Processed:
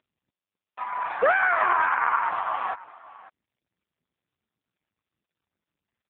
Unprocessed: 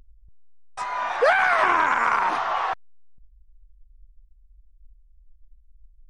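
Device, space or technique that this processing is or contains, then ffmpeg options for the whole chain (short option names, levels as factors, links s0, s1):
satellite phone: -af "highpass=380,lowpass=3200,aecho=1:1:551:0.112" -ar 8000 -c:a libopencore_amrnb -b:a 5900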